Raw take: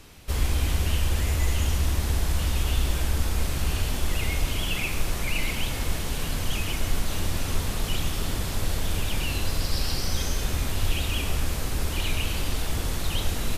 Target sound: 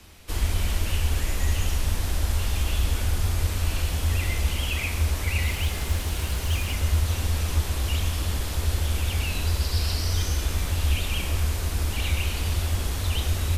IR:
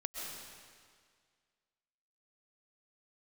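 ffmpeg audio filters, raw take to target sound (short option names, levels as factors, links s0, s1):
-filter_complex "[0:a]bandreject=f=77.2:t=h:w=4,bandreject=f=154.4:t=h:w=4,bandreject=f=231.6:t=h:w=4,bandreject=f=308.8:t=h:w=4,bandreject=f=386:t=h:w=4,bandreject=f=463.2:t=h:w=4,bandreject=f=540.4:t=h:w=4,bandreject=f=617.6:t=h:w=4,bandreject=f=694.8:t=h:w=4,bandreject=f=772:t=h:w=4,bandreject=f=849.2:t=h:w=4,bandreject=f=926.4:t=h:w=4,bandreject=f=1003.6:t=h:w=4,bandreject=f=1080.8:t=h:w=4,bandreject=f=1158:t=h:w=4,bandreject=f=1235.2:t=h:w=4,bandreject=f=1312.4:t=h:w=4,bandreject=f=1389.6:t=h:w=4,bandreject=f=1466.8:t=h:w=4,bandreject=f=1544:t=h:w=4,bandreject=f=1621.2:t=h:w=4,bandreject=f=1698.4:t=h:w=4,bandreject=f=1775.6:t=h:w=4,bandreject=f=1852.8:t=h:w=4,bandreject=f=1930:t=h:w=4,bandreject=f=2007.2:t=h:w=4,bandreject=f=2084.4:t=h:w=4,bandreject=f=2161.6:t=h:w=4,bandreject=f=2238.8:t=h:w=4,bandreject=f=2316:t=h:w=4,bandreject=f=2393.2:t=h:w=4,bandreject=f=2470.4:t=h:w=4,afreqshift=-93,asettb=1/sr,asplit=3[s0][s1][s2];[s0]atrim=end=5.474[s3];[s1]atrim=start=5.47:end=6.73,asetpts=PTS-STARTPTS,afade=t=in:d=0.004:c=qsin,afade=t=out:st=1.256:d=0.004:c=qsin,acrusher=bits=7:mode=log:mix=0:aa=0.000001[s4];[s2]atrim=start=6.726[s5];[s3][s4]acrossfade=d=0.004:c1=hsin:c2=qsin[s6];[s6][s5]acrossfade=d=0.004:c1=qsin:c2=hsin"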